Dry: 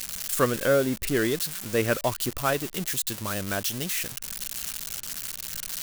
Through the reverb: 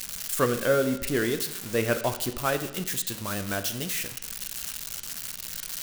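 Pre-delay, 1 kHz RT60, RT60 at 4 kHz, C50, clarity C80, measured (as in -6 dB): 17 ms, 0.80 s, 0.80 s, 12.0 dB, 14.0 dB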